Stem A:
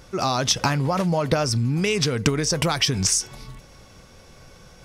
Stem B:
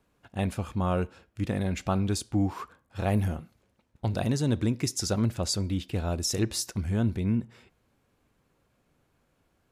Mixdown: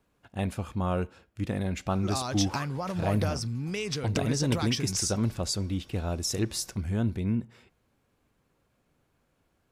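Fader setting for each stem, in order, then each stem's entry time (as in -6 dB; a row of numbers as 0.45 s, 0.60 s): -10.5 dB, -1.5 dB; 1.90 s, 0.00 s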